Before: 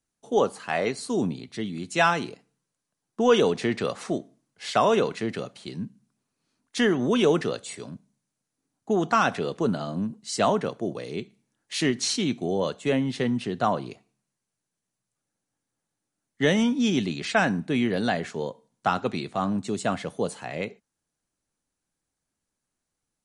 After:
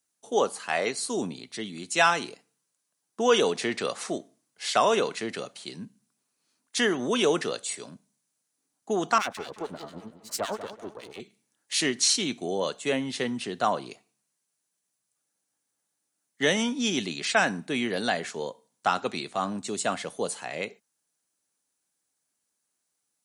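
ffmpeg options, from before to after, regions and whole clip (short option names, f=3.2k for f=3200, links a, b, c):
-filter_complex "[0:a]asettb=1/sr,asplit=3[a][b][c];[a]atrim=end=9.184[d];[b]atrim=start=9.18:end=11.2,asetpts=PTS-STARTPTS,afade=t=in:d=0.004:c=qsin,afade=t=out:st=2.016:d=0.004:c=qsin,aeval=exprs='if(lt(val(0),0),0.251*val(0),val(0))':c=same,acrossover=split=1400[e][f];[e]aeval=exprs='val(0)*(1-1/2+1/2*cos(2*PI*8.9*n/s))':c=same[g];[f]aeval=exprs='val(0)*(1-1/2-1/2*cos(2*PI*8.9*n/s))':c=same[h];[g][h]amix=inputs=2:normalize=0,asplit=2[i][j];[j]adelay=190,lowpass=f=2.8k:p=1,volume=-11.5dB,asplit=2[k][l];[l]adelay=190,lowpass=f=2.8k:p=1,volume=0.37,asplit=2[m][n];[n]adelay=190,lowpass=f=2.8k:p=1,volume=0.37,asplit=2[o][p];[p]adelay=190,lowpass=f=2.8k:p=1,volume=0.37[q];[i][k][m][o][q]amix=inputs=5:normalize=0,atrim=end_sample=89082[r];[c]atrim=start=11.196[s];[d][r]acrossfade=d=0.004:c1=hsin:c2=qsin[t];[t][s]acrossfade=d=0.004:c1=qsin:c2=hsin,highpass=f=410:p=1,highshelf=f=5.2k:g=9"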